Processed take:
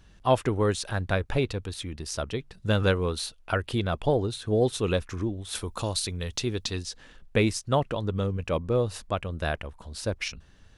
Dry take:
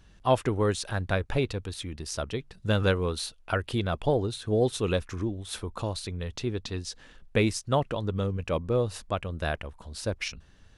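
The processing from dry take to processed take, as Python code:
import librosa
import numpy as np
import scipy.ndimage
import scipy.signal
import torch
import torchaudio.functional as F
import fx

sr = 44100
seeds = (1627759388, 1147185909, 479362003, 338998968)

y = fx.high_shelf(x, sr, hz=3400.0, db=11.0, at=(5.55, 6.83))
y = y * 10.0 ** (1.0 / 20.0)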